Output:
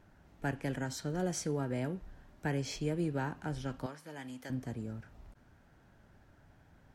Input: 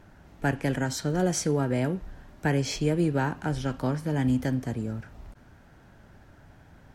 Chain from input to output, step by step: 3.86–4.5 HPF 980 Hz 6 dB/oct; gain -9 dB

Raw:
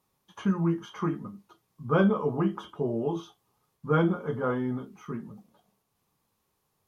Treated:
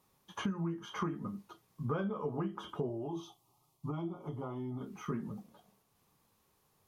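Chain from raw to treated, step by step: compressor 16:1, threshold -35 dBFS, peak gain reduction 18 dB; 2.89–4.81 fixed phaser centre 320 Hz, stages 8; gain +3 dB

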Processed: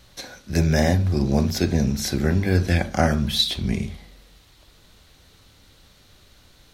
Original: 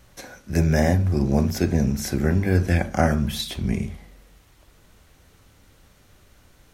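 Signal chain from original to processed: bell 4000 Hz +10.5 dB 0.77 oct

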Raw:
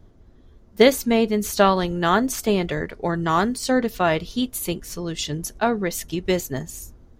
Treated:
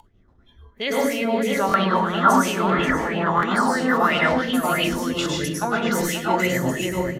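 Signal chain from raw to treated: outdoor echo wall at 91 m, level -7 dB; rotary speaker horn 5.5 Hz; reverse; compressor 10:1, threshold -27 dBFS, peak gain reduction 16 dB; reverse; gate -49 dBFS, range -14 dB; plate-style reverb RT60 0.96 s, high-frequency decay 0.45×, pre-delay 90 ms, DRR -6 dB; upward compressor, threshold -32 dBFS; spectral noise reduction 15 dB; stuck buffer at 1.67/3.36/5.19, samples 1024, times 2; LFO bell 3 Hz 880–2900 Hz +18 dB

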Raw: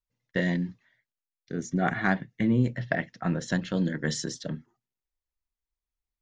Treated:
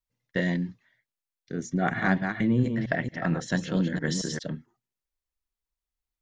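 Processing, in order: 1.73–4.39 reverse delay 0.226 s, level -5.5 dB

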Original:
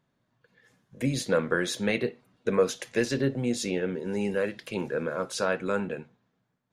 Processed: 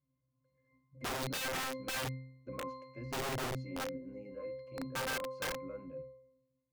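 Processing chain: octave resonator C, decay 0.77 s; wrapped overs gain 42 dB; gain +9.5 dB

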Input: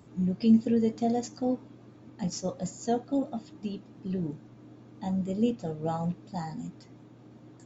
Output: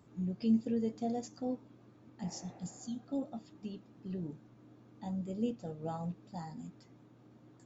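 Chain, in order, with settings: bell 1300 Hz +2.5 dB; spectral repair 2.27–3, 260–2800 Hz both; dynamic EQ 1700 Hz, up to -3 dB, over -45 dBFS, Q 0.76; gain -8 dB

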